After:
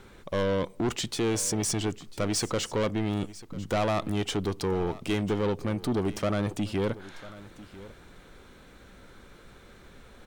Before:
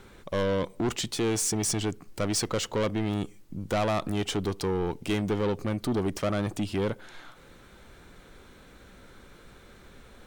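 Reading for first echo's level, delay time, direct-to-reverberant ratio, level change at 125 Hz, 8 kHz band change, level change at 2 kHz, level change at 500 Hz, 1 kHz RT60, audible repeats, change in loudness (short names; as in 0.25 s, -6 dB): -18.0 dB, 0.996 s, none, 0.0 dB, -1.0 dB, 0.0 dB, 0.0 dB, none, 1, 0.0 dB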